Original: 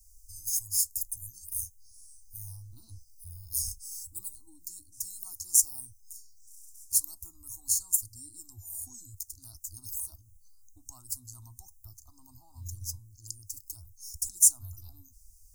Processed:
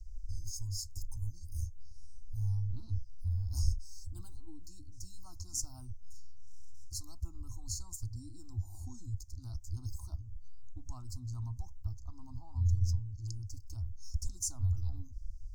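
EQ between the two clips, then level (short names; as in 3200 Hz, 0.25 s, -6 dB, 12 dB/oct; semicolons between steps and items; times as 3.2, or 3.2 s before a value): air absorption 210 m; low shelf 150 Hz +12 dB; +4.5 dB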